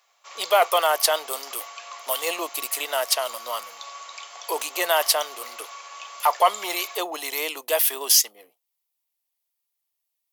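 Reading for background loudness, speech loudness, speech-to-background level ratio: -38.5 LUFS, -23.0 LUFS, 15.5 dB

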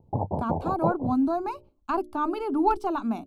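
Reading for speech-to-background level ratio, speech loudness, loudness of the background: 3.5 dB, -27.5 LUFS, -31.0 LUFS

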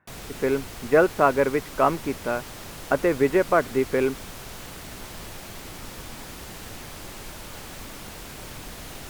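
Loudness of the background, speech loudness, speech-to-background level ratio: -38.5 LUFS, -23.5 LUFS, 15.0 dB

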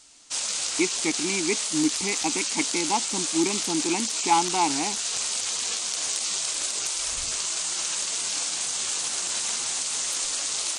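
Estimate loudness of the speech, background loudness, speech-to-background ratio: -28.0 LUFS, -25.5 LUFS, -2.5 dB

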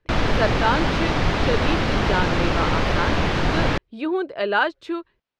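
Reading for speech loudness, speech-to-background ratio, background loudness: -26.0 LUFS, -4.0 dB, -22.0 LUFS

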